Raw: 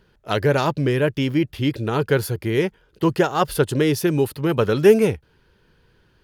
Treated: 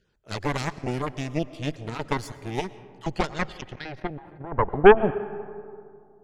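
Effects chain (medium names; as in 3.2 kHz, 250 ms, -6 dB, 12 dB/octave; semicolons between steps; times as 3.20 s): random holes in the spectrogram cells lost 21%; low-pass sweep 7.4 kHz -> 280 Hz, 2.97–5.12 s; Chebyshev shaper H 3 -16 dB, 4 -10 dB, 8 -21 dB, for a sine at 3 dBFS; on a send at -16 dB: reverberation RT60 2.4 s, pre-delay 75 ms; 3.61–4.52 s: on the sum: level held to a coarse grid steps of 10 dB; trim -6 dB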